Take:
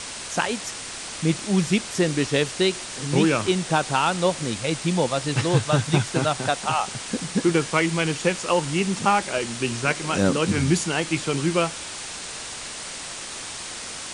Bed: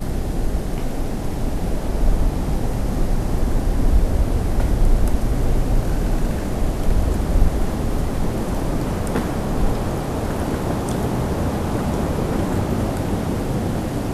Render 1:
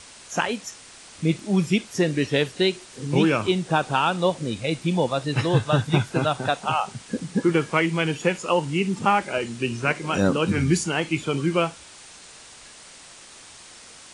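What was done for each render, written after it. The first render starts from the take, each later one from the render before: noise print and reduce 11 dB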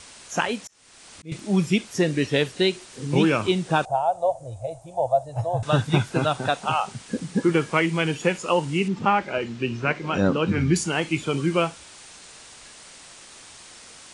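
0.65–1.32 auto swell 0.464 s; 3.85–5.63 EQ curve 120 Hz 0 dB, 190 Hz -29 dB, 410 Hz -17 dB, 670 Hz +11 dB, 1200 Hz -17 dB, 2200 Hz -27 dB, 4500 Hz -23 dB, 6800 Hz -11 dB, 13000 Hz -6 dB; 8.88–10.76 air absorption 130 m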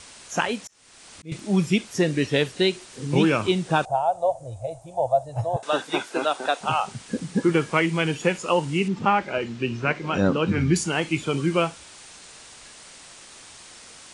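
5.56–6.61 HPF 300 Hz 24 dB/oct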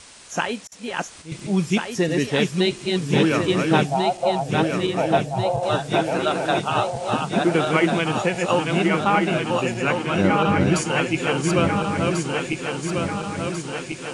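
regenerating reverse delay 0.696 s, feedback 75%, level -3 dB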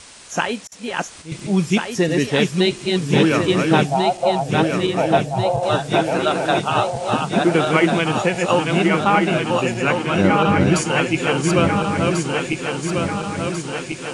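gain +3 dB; limiter -2 dBFS, peak gain reduction 1.5 dB

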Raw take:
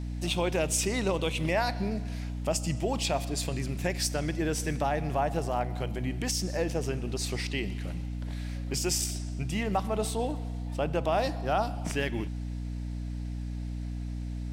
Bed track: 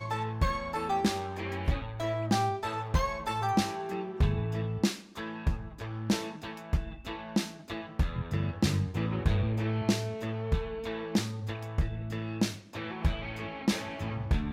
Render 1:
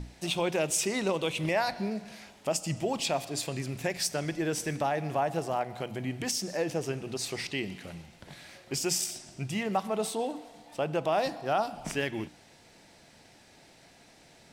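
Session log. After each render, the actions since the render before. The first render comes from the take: notches 60/120/180/240/300 Hz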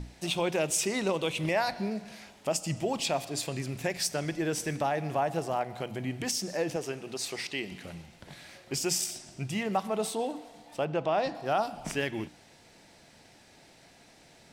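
6.76–7.72 HPF 300 Hz 6 dB/oct; 10.85–11.35 air absorption 95 m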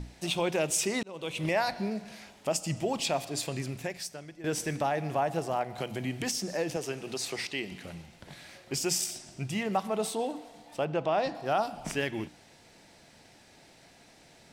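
1.03–1.47 fade in; 3.66–4.44 fade out quadratic, to -15 dB; 5.78–7.46 three-band squash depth 40%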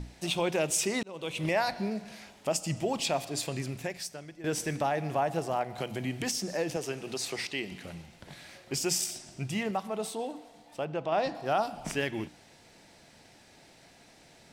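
9.71–11.12 gain -3.5 dB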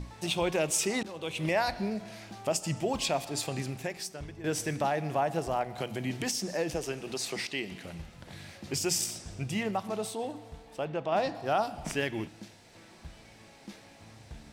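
add bed track -19 dB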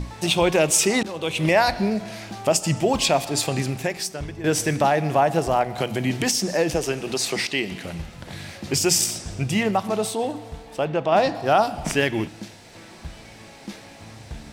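gain +10 dB

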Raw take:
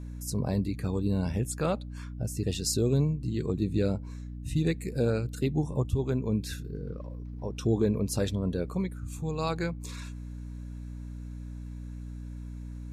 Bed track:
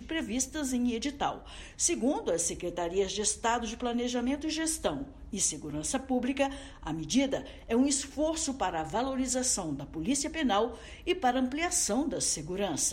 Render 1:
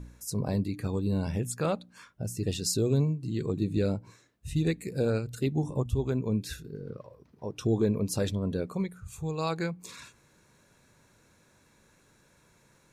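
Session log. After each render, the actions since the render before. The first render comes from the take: de-hum 60 Hz, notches 5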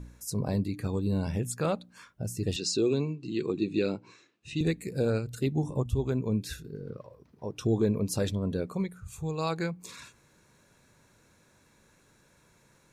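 2.56–4.61 speaker cabinet 210–7100 Hz, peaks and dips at 350 Hz +6 dB, 620 Hz -4 dB, 1200 Hz +3 dB, 2600 Hz +10 dB, 4000 Hz +4 dB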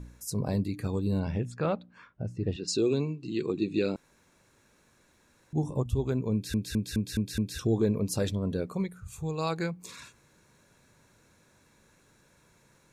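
1.19–2.67 LPF 4000 Hz -> 1700 Hz; 3.96–5.53 room tone; 6.33 stutter in place 0.21 s, 6 plays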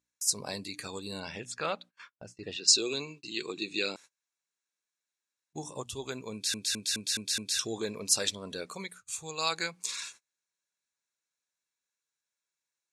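weighting filter ITU-R 468; gate -49 dBFS, range -32 dB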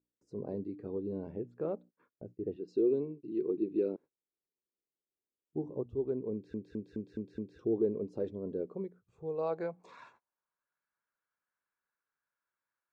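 low-pass sweep 390 Hz -> 1400 Hz, 9.01–10.74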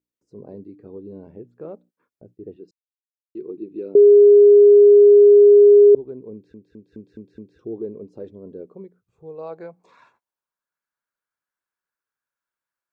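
2.71–3.35 mute; 3.95–5.95 bleep 410 Hz -6 dBFS; 6.52–6.92 gain -4 dB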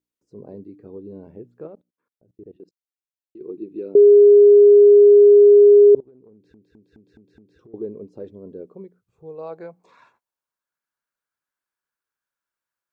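1.67–3.41 level quantiser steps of 20 dB; 6–7.74 compressor 10:1, threshold -46 dBFS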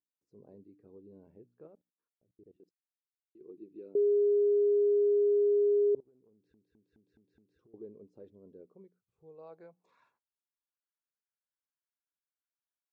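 gain -16.5 dB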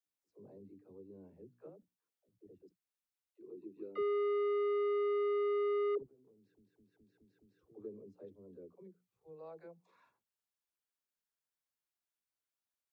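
soft clip -31.5 dBFS, distortion -12 dB; dispersion lows, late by 77 ms, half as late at 330 Hz

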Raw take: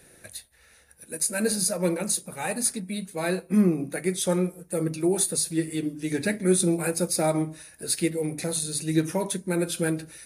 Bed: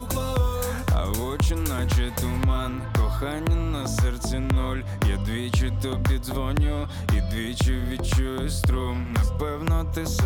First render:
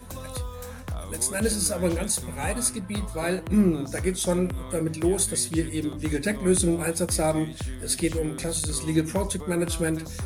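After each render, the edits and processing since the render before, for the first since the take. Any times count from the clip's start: add bed -11 dB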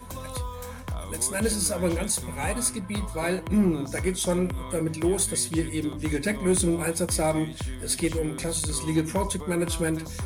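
small resonant body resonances 1000/2200/3200 Hz, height 9 dB; soft clip -13 dBFS, distortion -22 dB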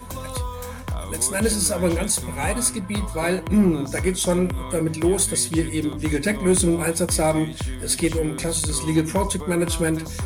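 gain +4.5 dB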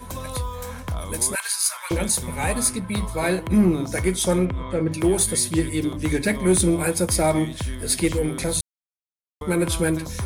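1.35–1.91 steep high-pass 950 Hz; 4.45–4.92 air absorption 150 m; 8.61–9.41 mute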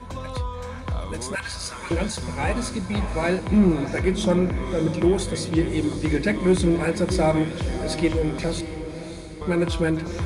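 air absorption 110 m; diffused feedback echo 0.613 s, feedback 47%, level -10 dB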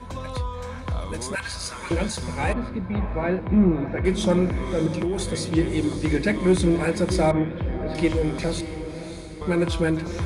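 2.53–4.05 air absorption 490 m; 4.86–5.32 compressor, threshold -21 dBFS; 7.31–7.95 air absorption 460 m

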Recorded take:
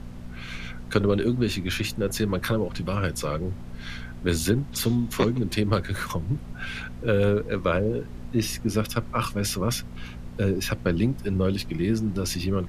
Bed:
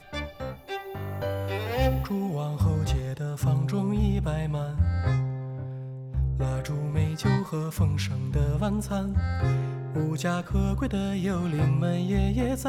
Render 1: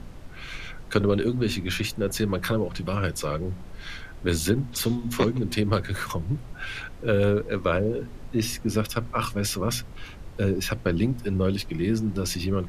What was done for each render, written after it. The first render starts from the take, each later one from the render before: de-hum 60 Hz, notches 4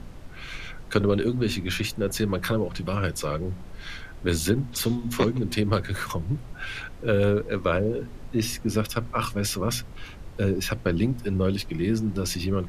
nothing audible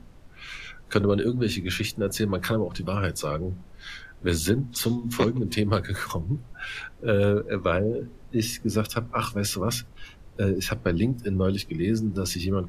noise print and reduce 8 dB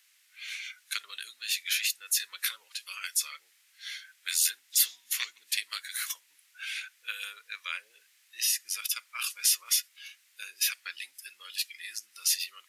Chebyshev high-pass 2000 Hz, order 3; high shelf 5900 Hz +11 dB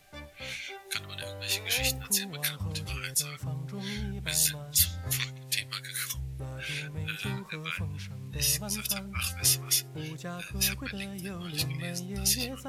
add bed -11.5 dB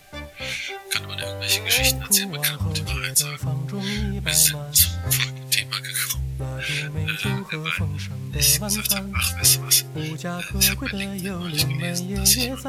gain +9.5 dB; limiter -3 dBFS, peak gain reduction 2.5 dB

